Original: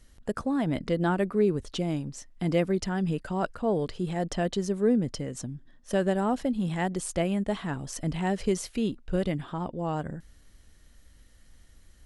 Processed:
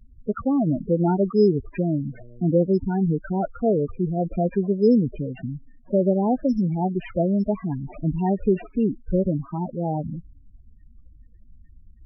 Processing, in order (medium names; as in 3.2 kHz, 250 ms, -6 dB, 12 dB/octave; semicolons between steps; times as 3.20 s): 1.96–2.72 s: mains buzz 120 Hz, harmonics 7, -50 dBFS -2 dB/octave; sample-rate reducer 5.5 kHz, jitter 0%; loudest bins only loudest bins 8; trim +6.5 dB